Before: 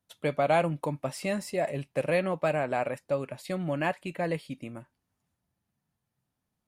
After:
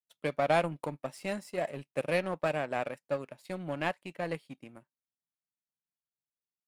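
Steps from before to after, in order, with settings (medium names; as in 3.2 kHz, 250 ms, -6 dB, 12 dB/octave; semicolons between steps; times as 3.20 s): high-pass 130 Hz 12 dB/octave; power-law waveshaper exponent 1.4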